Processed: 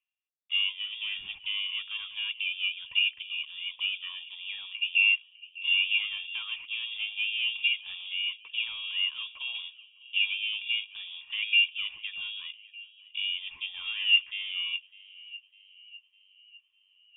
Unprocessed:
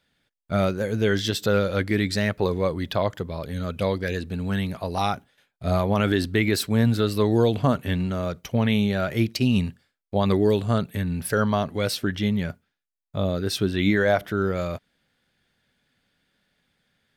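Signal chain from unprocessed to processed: treble shelf 2.6 kHz +9.5 dB; hum notches 60/120/180/240 Hz; reverse; upward compressor, threshold -40 dBFS; reverse; waveshaping leveller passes 3; cascade formant filter a; band-passed feedback delay 603 ms, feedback 62%, band-pass 480 Hz, level -17 dB; frequency inversion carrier 3.5 kHz

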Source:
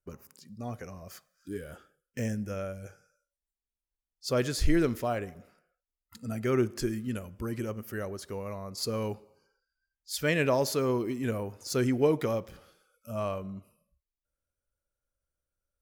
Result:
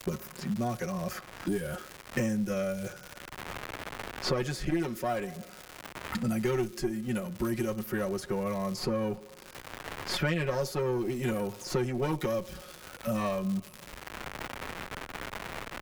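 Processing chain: single-diode clipper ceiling -26.5 dBFS; comb 5.5 ms, depth 97%; crackle 260 per s -41 dBFS; three bands compressed up and down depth 100%

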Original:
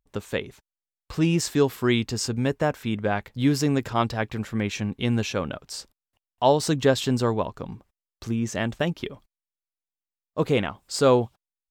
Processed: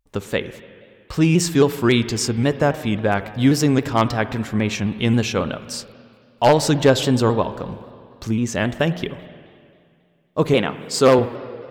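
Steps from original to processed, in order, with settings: one-sided wavefolder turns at -11.5 dBFS; 10.53–11.19 s: high-pass 140 Hz 12 dB/octave; spring tank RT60 2.3 s, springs 47/59 ms, chirp 70 ms, DRR 13 dB; vibrato with a chosen wave saw down 3.7 Hz, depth 100 cents; trim +5.5 dB

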